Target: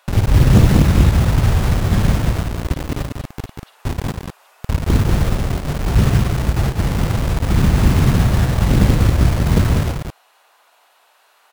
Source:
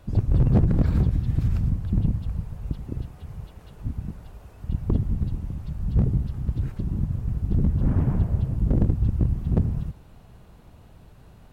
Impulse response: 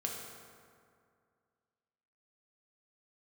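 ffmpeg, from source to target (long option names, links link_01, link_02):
-filter_complex "[0:a]acrossover=split=710[link_01][link_02];[link_01]acrusher=bits=4:mix=0:aa=0.000001[link_03];[link_03][link_02]amix=inputs=2:normalize=0,aecho=1:1:54|191:0.376|0.596,volume=6.5dB"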